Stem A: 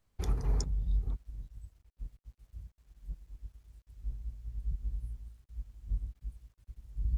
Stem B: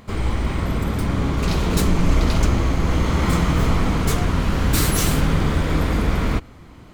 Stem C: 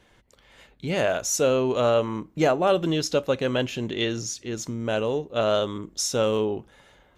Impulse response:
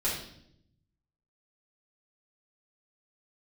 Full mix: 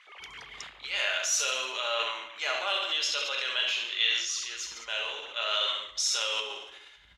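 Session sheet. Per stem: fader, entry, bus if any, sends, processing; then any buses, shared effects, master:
+2.5 dB, 0.00 s, no send, no echo send, dry
-9.0 dB, 0.00 s, no send, no echo send, sine-wave speech; limiter -24 dBFS, peak gain reduction 22 dB; auto duck -10 dB, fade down 1.70 s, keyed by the third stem
+0.5 dB, 0.00 s, send -5.5 dB, echo send -4.5 dB, HPF 820 Hz 12 dB/oct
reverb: on, RT60 0.70 s, pre-delay 5 ms
echo: feedback echo 70 ms, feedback 59%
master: transient shaper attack -2 dB, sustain +6 dB; band-pass 3200 Hz, Q 1.2

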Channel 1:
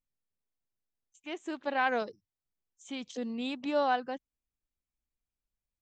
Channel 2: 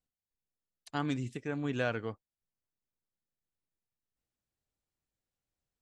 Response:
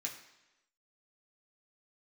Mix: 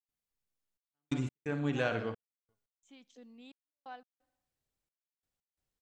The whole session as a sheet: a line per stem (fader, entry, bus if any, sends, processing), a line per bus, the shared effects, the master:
-19.0 dB, 0.00 s, send -14.5 dB, no echo send, dry
+0.5 dB, 0.00 s, no send, echo send -10 dB, de-hum 59.83 Hz, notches 28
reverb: on, RT60 1.0 s, pre-delay 3 ms
echo: feedback echo 62 ms, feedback 51%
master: step gate ".xxxxxxxx....xx." 175 bpm -60 dB

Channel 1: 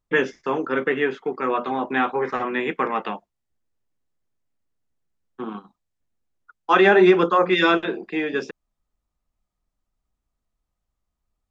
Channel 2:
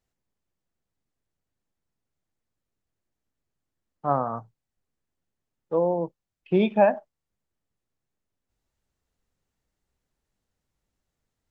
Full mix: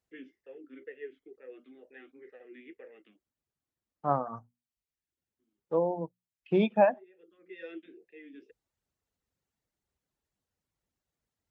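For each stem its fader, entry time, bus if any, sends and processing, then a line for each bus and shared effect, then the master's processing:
-16.5 dB, 0.00 s, no send, vowel sweep e-i 2.1 Hz; auto duck -22 dB, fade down 1.00 s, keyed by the second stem
-3.5 dB, 0.00 s, no send, notches 60/120/180/240 Hz; reverb removal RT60 0.76 s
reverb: off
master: HPF 52 Hz

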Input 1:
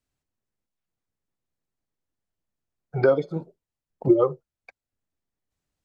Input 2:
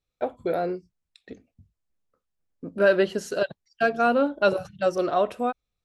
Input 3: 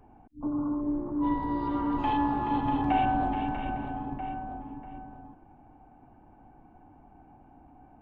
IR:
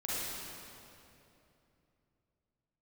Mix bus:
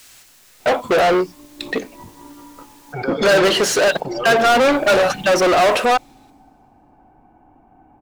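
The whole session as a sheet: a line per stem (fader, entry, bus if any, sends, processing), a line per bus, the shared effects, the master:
-6.5 dB, 0.00 s, send -10.5 dB, tilt shelf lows -8.5 dB; fast leveller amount 100%
+2.0 dB, 0.45 s, no send, overdrive pedal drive 35 dB, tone 4000 Hz, clips at -8.5 dBFS
-4.0 dB, 0.60 s, send -8 dB, negative-ratio compressor -35 dBFS, ratio -0.5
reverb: on, RT60 2.9 s, pre-delay 36 ms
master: low shelf 210 Hz -7 dB

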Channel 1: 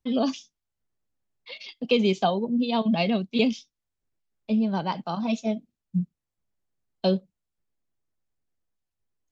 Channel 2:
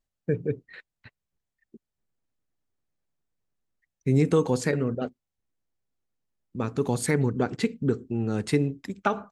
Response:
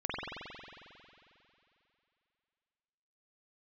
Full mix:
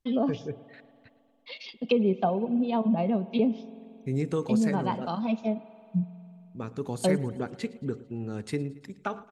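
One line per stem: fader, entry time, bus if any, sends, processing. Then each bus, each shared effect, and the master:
-2.0 dB, 0.00 s, send -23 dB, no echo send, treble ducked by the level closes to 910 Hz, closed at -19 dBFS
-7.5 dB, 0.00 s, no send, echo send -20.5 dB, dry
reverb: on, RT60 2.8 s, pre-delay 45 ms
echo: feedback echo 0.112 s, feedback 56%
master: dry

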